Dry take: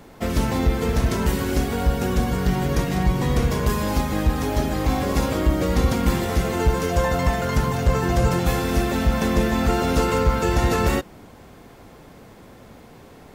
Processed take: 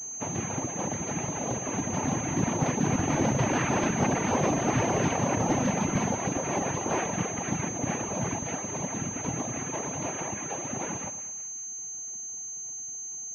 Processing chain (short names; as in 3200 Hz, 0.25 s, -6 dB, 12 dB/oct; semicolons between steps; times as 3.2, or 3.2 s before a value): Doppler pass-by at 4.24, 15 m/s, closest 19 m; noise vocoder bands 4; in parallel at -8 dB: wavefolder -21.5 dBFS; on the sum: short-mantissa float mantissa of 2-bit; reverb removal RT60 1.2 s; on a send: split-band echo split 1200 Hz, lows 0.11 s, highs 0.187 s, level -12.5 dB; on the sum: pulse-width modulation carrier 6300 Hz